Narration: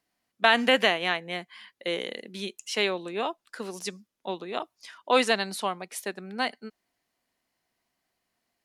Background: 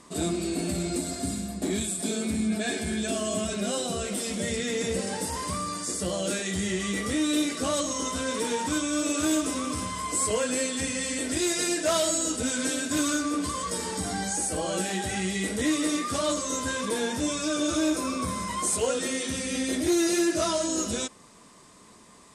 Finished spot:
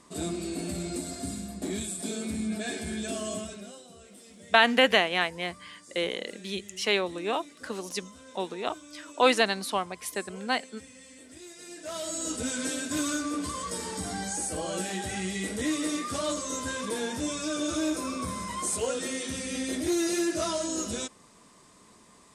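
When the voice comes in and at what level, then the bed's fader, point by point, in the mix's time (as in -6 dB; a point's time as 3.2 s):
4.10 s, +0.5 dB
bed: 3.32 s -4.5 dB
3.84 s -20.5 dB
11.57 s -20.5 dB
12.32 s -3.5 dB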